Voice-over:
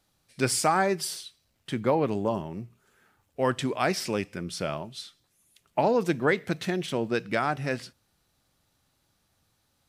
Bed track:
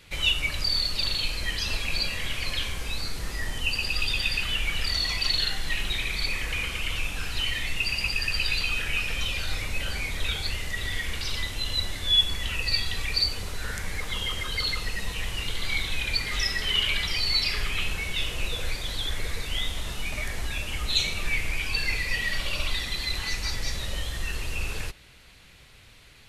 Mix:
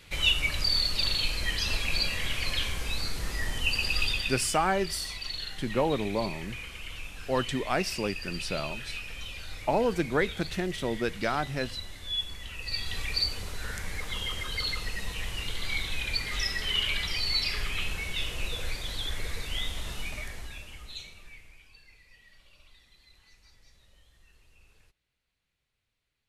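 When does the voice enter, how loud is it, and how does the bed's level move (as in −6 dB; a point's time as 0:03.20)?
3.90 s, −2.5 dB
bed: 0:04.05 −0.5 dB
0:04.52 −11 dB
0:12.55 −11 dB
0:12.96 −3.5 dB
0:20.00 −3.5 dB
0:21.85 −30 dB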